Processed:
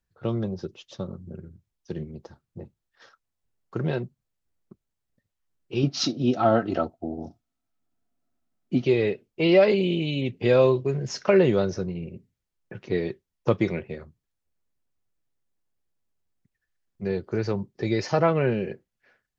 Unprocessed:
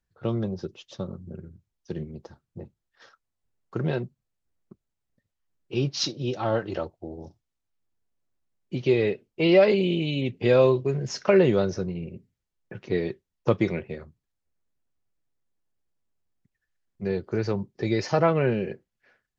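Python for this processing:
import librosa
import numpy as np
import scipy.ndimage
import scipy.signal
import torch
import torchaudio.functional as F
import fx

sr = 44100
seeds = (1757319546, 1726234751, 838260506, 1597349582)

y = fx.small_body(x, sr, hz=(250.0, 690.0, 1300.0), ring_ms=35, db=12, at=(5.83, 8.85))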